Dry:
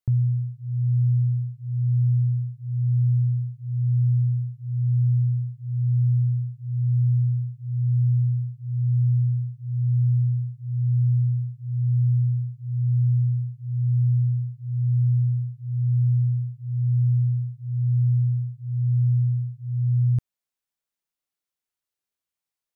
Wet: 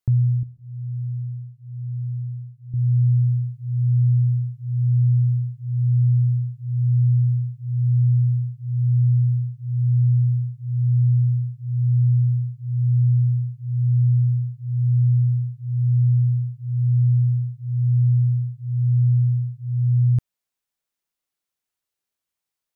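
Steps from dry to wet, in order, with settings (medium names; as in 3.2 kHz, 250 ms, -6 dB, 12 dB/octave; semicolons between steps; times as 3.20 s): 0.43–2.74 s: feedback comb 82 Hz, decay 1.6 s, harmonics all, mix 70%; trim +3 dB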